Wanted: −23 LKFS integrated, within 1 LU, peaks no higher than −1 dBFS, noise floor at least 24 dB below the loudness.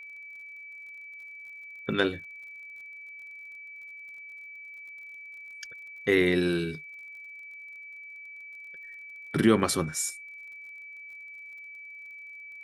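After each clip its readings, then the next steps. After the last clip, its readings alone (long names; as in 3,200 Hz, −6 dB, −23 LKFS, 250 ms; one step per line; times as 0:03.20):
crackle rate 39 per second; interfering tone 2,300 Hz; level of the tone −42 dBFS; integrated loudness −33.0 LKFS; sample peak −8.5 dBFS; target loudness −23.0 LKFS
→ click removal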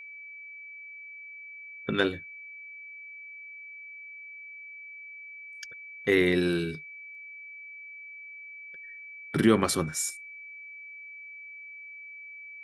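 crackle rate 0.079 per second; interfering tone 2,300 Hz; level of the tone −42 dBFS
→ notch filter 2,300 Hz, Q 30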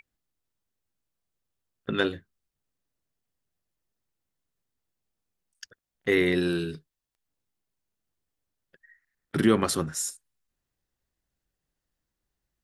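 interfering tone none found; integrated loudness −27.0 LKFS; sample peak −8.5 dBFS; target loudness −23.0 LKFS
→ level +4 dB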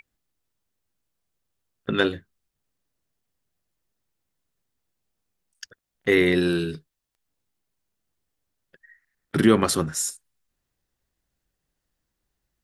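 integrated loudness −23.0 LKFS; sample peak −4.5 dBFS; background noise floor −81 dBFS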